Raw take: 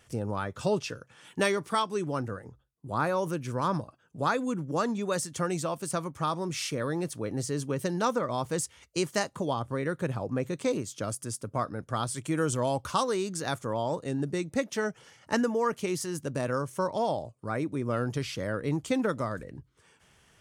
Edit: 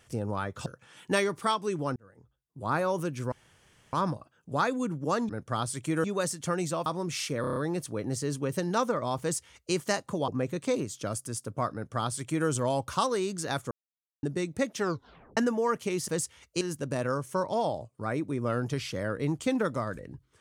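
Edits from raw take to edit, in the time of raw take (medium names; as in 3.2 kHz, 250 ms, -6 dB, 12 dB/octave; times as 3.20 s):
0.66–0.94 s: delete
2.24–3.04 s: fade in
3.60 s: insert room tone 0.61 s
5.78–6.28 s: delete
6.83 s: stutter 0.03 s, 6 plays
8.48–9.01 s: copy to 16.05 s
9.55–10.25 s: delete
11.70–12.45 s: copy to 4.96 s
13.68–14.20 s: mute
14.76 s: tape stop 0.58 s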